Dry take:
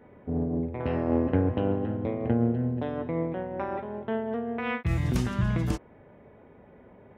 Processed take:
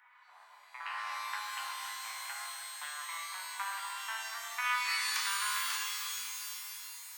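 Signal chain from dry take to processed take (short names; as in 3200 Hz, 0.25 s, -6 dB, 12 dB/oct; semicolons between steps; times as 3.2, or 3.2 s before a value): steep high-pass 1000 Hz 48 dB/oct; shimmer reverb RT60 3.3 s, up +12 st, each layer -2 dB, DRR 1.5 dB; gain +2.5 dB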